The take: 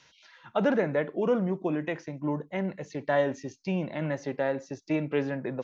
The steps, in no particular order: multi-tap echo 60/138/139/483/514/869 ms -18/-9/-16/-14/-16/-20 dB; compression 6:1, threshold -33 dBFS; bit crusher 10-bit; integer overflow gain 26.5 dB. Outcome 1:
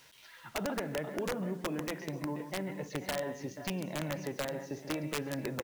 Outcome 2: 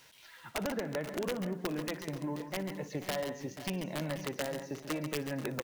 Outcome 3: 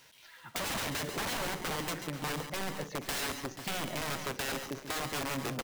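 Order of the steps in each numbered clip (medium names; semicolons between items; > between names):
compression > multi-tap echo > bit crusher > integer overflow; bit crusher > compression > integer overflow > multi-tap echo; bit crusher > integer overflow > compression > multi-tap echo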